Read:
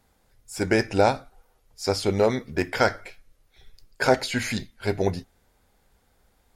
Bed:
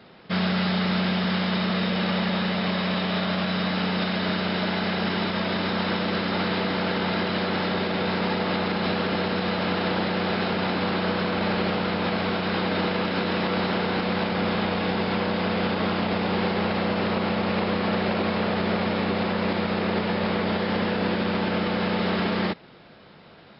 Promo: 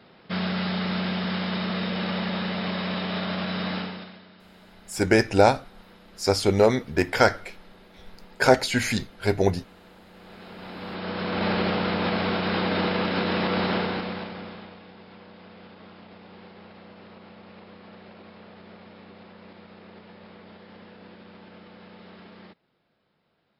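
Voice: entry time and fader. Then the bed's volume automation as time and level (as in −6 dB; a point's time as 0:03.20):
4.40 s, +2.5 dB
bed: 0:03.76 −3.5 dB
0:04.29 −26.5 dB
0:10.04 −26.5 dB
0:11.45 0 dB
0:13.77 0 dB
0:14.86 −22.5 dB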